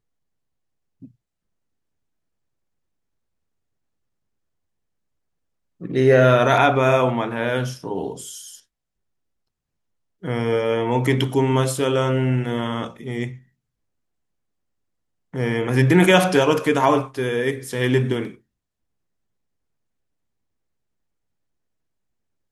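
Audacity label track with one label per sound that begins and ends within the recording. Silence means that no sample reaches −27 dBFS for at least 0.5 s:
5.820000	8.380000	sound
10.240000	13.290000	sound
15.340000	18.280000	sound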